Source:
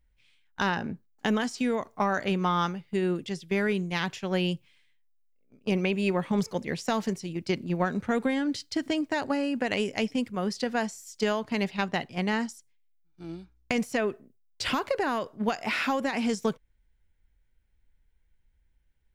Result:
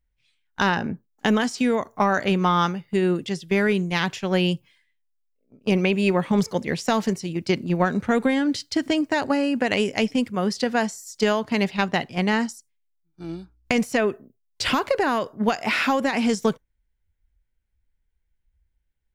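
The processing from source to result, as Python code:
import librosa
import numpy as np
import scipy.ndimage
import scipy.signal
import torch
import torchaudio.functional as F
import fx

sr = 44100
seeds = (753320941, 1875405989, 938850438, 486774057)

y = fx.noise_reduce_blind(x, sr, reduce_db=12)
y = y * librosa.db_to_amplitude(6.0)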